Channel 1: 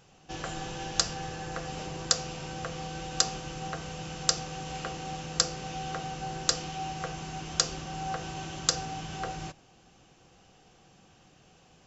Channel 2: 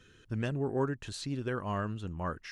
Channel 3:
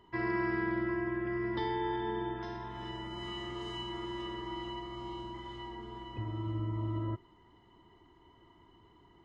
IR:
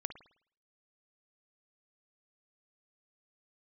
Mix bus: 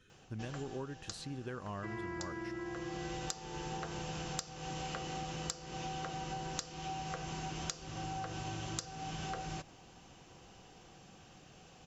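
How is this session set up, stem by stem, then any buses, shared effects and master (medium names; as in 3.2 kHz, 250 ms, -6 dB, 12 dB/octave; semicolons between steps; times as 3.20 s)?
+1.5 dB, 0.10 s, no send, auto duck -19 dB, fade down 1.00 s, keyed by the second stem
-6.5 dB, 0.00 s, no send, none
-6.5 dB, 1.70 s, no send, none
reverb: none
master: compression 12:1, threshold -37 dBFS, peak gain reduction 20.5 dB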